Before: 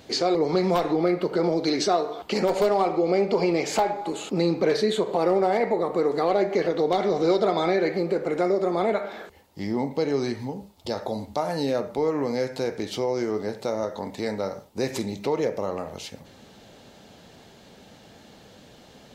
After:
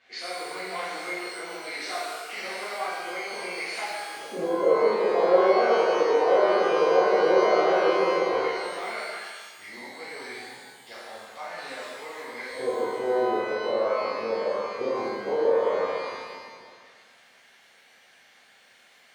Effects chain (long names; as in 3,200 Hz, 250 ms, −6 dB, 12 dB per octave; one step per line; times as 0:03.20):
auto-filter band-pass square 0.12 Hz 520–2,000 Hz
reverb with rising layers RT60 1.5 s, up +12 semitones, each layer −8 dB, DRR −11 dB
level −6.5 dB